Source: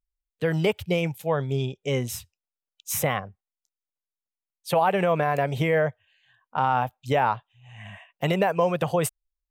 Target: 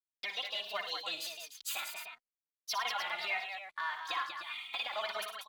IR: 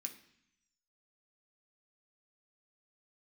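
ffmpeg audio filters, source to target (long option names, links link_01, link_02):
-filter_complex "[0:a]highpass=1300,agate=range=-16dB:threshold=-60dB:ratio=16:detection=peak,highshelf=frequency=5100:width_type=q:width=1.5:gain=-10.5,aecho=1:1:3.5:0.35,asplit=2[link_01][link_02];[link_02]acompressor=threshold=-42dB:ratio=6,volume=3dB[link_03];[link_01][link_03]amix=inputs=2:normalize=0,alimiter=limit=-22dB:level=0:latency=1:release=291,aeval=exprs='sgn(val(0))*max(abs(val(0))-0.00112,0)':channel_layout=same,asetrate=31183,aresample=44100,atempo=1.41421,aecho=1:1:101|179|328|523:0.335|0.211|0.447|0.316,asetrate=76440,aresample=44100,asplit=2[link_04][link_05];[link_05]adelay=3,afreqshift=1.6[link_06];[link_04][link_06]amix=inputs=2:normalize=1"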